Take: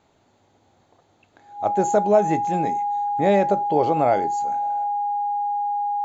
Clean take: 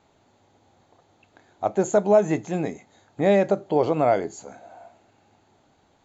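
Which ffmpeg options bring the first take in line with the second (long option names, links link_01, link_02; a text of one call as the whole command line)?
ffmpeg -i in.wav -af "bandreject=frequency=820:width=30,asetnsamples=nb_out_samples=441:pad=0,asendcmd='4.84 volume volume 5.5dB',volume=0dB" out.wav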